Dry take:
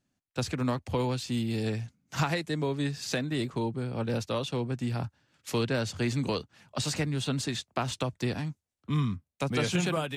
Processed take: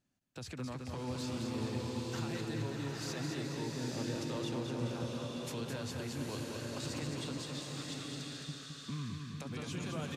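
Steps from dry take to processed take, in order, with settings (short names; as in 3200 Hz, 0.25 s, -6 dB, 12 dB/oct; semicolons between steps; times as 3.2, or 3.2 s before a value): compressor, threshold -33 dBFS, peak gain reduction 10 dB; limiter -30.5 dBFS, peak gain reduction 10 dB; 7.38–8.49 rippled Chebyshev high-pass 1100 Hz, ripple 6 dB; feedback echo 0.214 s, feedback 56%, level -5 dB; bloom reverb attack 0.92 s, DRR 0 dB; gain -4 dB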